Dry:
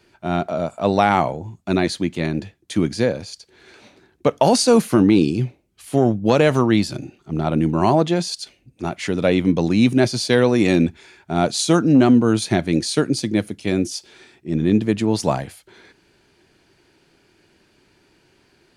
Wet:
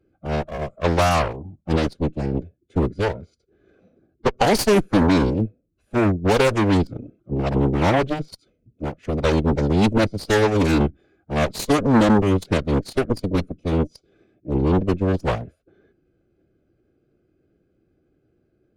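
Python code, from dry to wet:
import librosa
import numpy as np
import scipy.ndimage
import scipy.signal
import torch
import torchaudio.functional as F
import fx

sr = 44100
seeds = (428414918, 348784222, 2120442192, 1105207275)

y = fx.wiener(x, sr, points=41)
y = fx.cheby_harmonics(y, sr, harmonics=(8,), levels_db=(-13,), full_scale_db=-2.0)
y = fx.pitch_keep_formants(y, sr, semitones=-2.5)
y = y * librosa.db_to_amplitude(-3.0)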